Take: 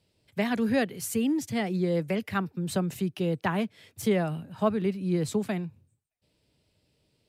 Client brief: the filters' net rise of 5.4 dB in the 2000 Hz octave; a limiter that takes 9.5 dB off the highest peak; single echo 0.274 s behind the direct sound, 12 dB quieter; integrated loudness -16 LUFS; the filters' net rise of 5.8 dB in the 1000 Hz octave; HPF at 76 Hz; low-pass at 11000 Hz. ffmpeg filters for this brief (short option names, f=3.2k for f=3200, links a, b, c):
-af "highpass=76,lowpass=11k,equalizer=f=1k:t=o:g=6.5,equalizer=f=2k:t=o:g=4.5,alimiter=limit=-18dB:level=0:latency=1,aecho=1:1:274:0.251,volume=13dB"